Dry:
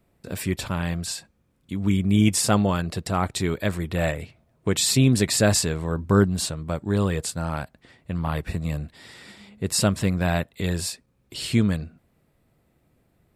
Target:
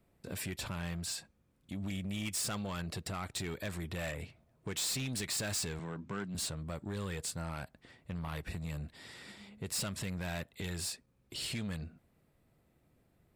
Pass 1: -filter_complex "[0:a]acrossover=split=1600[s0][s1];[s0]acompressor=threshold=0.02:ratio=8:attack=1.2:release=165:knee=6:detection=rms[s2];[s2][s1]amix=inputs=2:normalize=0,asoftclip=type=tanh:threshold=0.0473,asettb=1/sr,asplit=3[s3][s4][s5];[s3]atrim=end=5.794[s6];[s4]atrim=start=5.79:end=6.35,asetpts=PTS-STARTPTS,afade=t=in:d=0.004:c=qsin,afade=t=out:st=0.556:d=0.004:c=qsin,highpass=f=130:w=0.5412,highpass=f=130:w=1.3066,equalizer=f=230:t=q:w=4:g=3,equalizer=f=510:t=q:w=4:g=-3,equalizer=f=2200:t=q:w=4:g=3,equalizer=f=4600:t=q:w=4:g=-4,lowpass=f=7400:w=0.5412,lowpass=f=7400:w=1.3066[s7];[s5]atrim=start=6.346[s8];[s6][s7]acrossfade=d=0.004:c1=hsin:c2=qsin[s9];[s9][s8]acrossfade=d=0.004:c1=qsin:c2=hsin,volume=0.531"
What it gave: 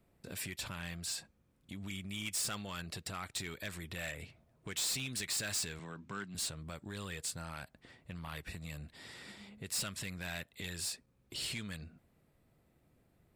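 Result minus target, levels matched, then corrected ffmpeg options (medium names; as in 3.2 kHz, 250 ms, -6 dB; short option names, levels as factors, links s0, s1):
compression: peak gain reduction +8 dB
-filter_complex "[0:a]acrossover=split=1600[s0][s1];[s0]acompressor=threshold=0.0562:ratio=8:attack=1.2:release=165:knee=6:detection=rms[s2];[s2][s1]amix=inputs=2:normalize=0,asoftclip=type=tanh:threshold=0.0473,asettb=1/sr,asplit=3[s3][s4][s5];[s3]atrim=end=5.794[s6];[s4]atrim=start=5.79:end=6.35,asetpts=PTS-STARTPTS,afade=t=in:d=0.004:c=qsin,afade=t=out:st=0.556:d=0.004:c=qsin,highpass=f=130:w=0.5412,highpass=f=130:w=1.3066,equalizer=f=230:t=q:w=4:g=3,equalizer=f=510:t=q:w=4:g=-3,equalizer=f=2200:t=q:w=4:g=3,equalizer=f=4600:t=q:w=4:g=-4,lowpass=f=7400:w=0.5412,lowpass=f=7400:w=1.3066[s7];[s5]atrim=start=6.346[s8];[s6][s7]acrossfade=d=0.004:c1=hsin:c2=qsin[s9];[s9][s8]acrossfade=d=0.004:c1=qsin:c2=hsin,volume=0.531"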